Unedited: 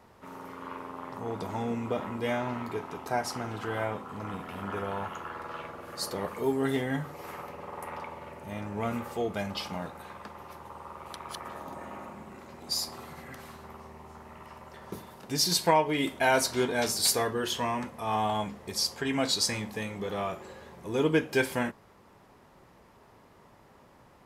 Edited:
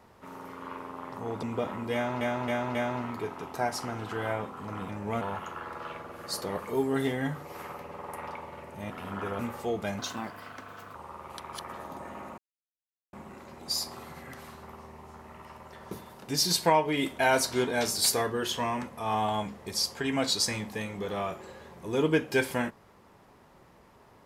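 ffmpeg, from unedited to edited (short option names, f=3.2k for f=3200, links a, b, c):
-filter_complex "[0:a]asplit=12[a][b][c][d][e][f][g][h][i][j][k][l];[a]atrim=end=1.432[m];[b]atrim=start=1.758:end=2.542[n];[c]atrim=start=2.268:end=2.542[o];[d]atrim=start=2.268:end=2.542[p];[e]atrim=start=2.268:end=4.412[q];[f]atrim=start=8.588:end=8.912[r];[g]atrim=start=4.898:end=8.592[s];[h]atrim=start=4.408:end=4.902[t];[i]atrim=start=8.908:end=9.514[u];[j]atrim=start=9.51:end=10.71,asetpts=PTS-STARTPTS,asetrate=55125,aresample=44100[v];[k]atrim=start=10.706:end=12.14,asetpts=PTS-STARTPTS,afade=t=out:st=1.43:d=0.004:c=hsin,apad=pad_dur=0.75[w];[l]atrim=start=12.14,asetpts=PTS-STARTPTS,afade=t=in:d=0.004:c=hsin[x];[m][n]acrossfade=d=0.004:c1=hsin:c2=hsin[y];[y][o]acrossfade=d=0.004:c1=hsin:c2=hsin[z];[z][p]acrossfade=d=0.004:c1=hsin:c2=hsin[aa];[aa][q]acrossfade=d=0.004:c1=hsin:c2=hsin[ab];[ab][r]acrossfade=d=0.004:c1=hsin:c2=hsin[ac];[ac][s]acrossfade=d=0.004:c1=hsin:c2=hsin[ad];[ad][t]acrossfade=d=0.004:c1=hsin:c2=hsin[ae];[ae][u]acrossfade=d=0.004:c1=hsin:c2=hsin[af];[af][v]acrossfade=d=0.004:c1=hsin:c2=hsin[ag];[w][x]concat=n=2:v=0:a=1[ah];[ag][ah]acrossfade=d=0.004:c1=hsin:c2=hsin"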